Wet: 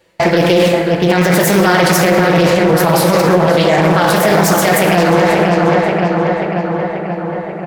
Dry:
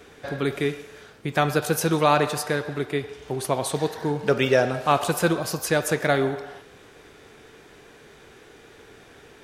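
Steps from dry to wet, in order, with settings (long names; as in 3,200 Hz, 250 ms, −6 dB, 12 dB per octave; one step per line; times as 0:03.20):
noise gate −40 dBFS, range −34 dB
comb filter 7.4 ms, depth 39%
reversed playback
downward compressor 6 to 1, threshold −32 dBFS, peak gain reduction 18.5 dB
reversed playback
speed change +23%
flanger 0.82 Hz, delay 9.9 ms, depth 9.6 ms, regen −50%
feedback echo with a low-pass in the loop 535 ms, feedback 70%, low-pass 3,300 Hz, level −6.5 dB
dense smooth reverb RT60 1.9 s, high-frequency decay 0.5×, DRR 4 dB
boost into a limiter +31.5 dB
highs frequency-modulated by the lows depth 0.38 ms
level −1 dB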